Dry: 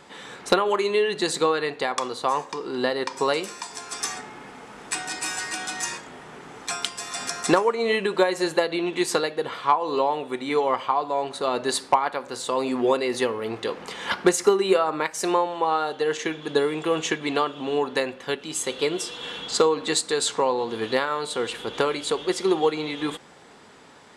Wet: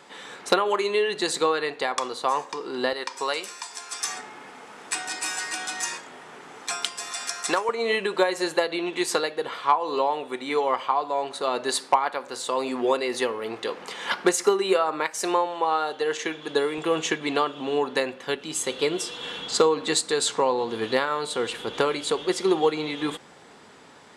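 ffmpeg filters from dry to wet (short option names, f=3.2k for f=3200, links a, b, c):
-af "asetnsamples=n=441:p=0,asendcmd='2.93 highpass f 980;4.08 highpass f 390;7.13 highpass f 1000;7.69 highpass f 330;16.78 highpass f 130;18.36 highpass f 52',highpass=f=290:p=1"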